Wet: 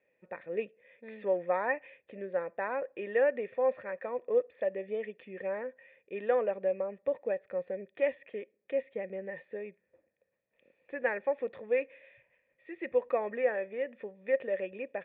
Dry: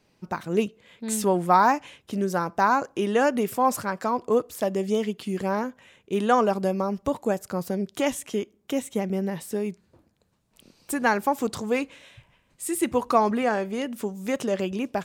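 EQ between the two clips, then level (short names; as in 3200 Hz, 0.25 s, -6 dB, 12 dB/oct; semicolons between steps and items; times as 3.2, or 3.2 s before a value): vocal tract filter e; tilt +3 dB/oct; +4.5 dB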